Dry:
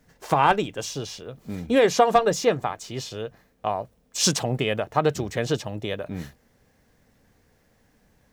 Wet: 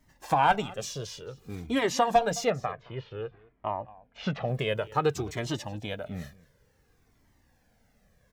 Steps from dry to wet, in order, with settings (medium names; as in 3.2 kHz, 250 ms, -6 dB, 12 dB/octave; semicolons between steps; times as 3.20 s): 2.50–4.48 s: low-pass 2.6 kHz 24 dB/octave; delay 216 ms -21.5 dB; Shepard-style flanger falling 0.55 Hz